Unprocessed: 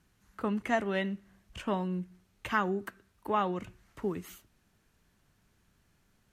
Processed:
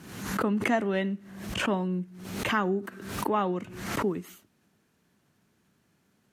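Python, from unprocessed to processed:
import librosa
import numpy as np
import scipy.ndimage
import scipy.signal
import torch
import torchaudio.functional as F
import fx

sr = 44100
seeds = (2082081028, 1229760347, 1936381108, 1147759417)

y = scipy.signal.sosfilt(scipy.signal.butter(2, 220.0, 'highpass', fs=sr, output='sos'), x)
y = fx.low_shelf(y, sr, hz=320.0, db=11.5)
y = fx.pre_swell(y, sr, db_per_s=55.0)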